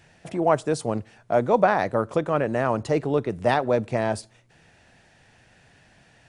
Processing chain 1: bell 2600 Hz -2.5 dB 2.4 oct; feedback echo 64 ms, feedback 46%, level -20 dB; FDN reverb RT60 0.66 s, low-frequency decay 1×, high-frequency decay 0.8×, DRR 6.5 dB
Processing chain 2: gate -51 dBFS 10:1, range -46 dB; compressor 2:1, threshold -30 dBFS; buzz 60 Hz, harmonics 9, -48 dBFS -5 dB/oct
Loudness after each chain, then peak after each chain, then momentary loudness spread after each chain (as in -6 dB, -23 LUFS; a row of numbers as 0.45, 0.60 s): -23.0, -31.0 LUFS; -4.0, -13.5 dBFS; 9, 21 LU